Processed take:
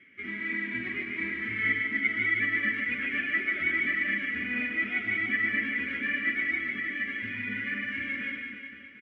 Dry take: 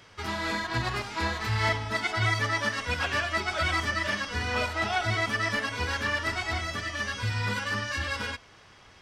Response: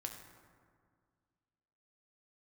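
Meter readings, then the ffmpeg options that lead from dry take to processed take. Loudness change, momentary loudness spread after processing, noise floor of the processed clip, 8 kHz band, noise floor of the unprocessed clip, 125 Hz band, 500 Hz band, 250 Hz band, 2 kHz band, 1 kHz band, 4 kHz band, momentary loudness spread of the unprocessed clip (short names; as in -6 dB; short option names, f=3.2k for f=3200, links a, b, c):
0.0 dB, 7 LU, -46 dBFS, under -30 dB, -54 dBFS, -16.5 dB, -12.0 dB, +1.0 dB, +2.5 dB, -16.5 dB, -11.0 dB, 5 LU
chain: -filter_complex "[0:a]asplit=3[a][b][c];[a]bandpass=f=270:t=q:w=8,volume=0dB[d];[b]bandpass=f=2.29k:t=q:w=8,volume=-6dB[e];[c]bandpass=f=3.01k:t=q:w=8,volume=-9dB[f];[d][e][f]amix=inputs=3:normalize=0,highshelf=f=3k:t=q:w=3:g=-13.5,aecho=1:1:5.2:0.35,aecho=1:1:150|322.5|520.9|749|1011:0.631|0.398|0.251|0.158|0.1,volume=7dB"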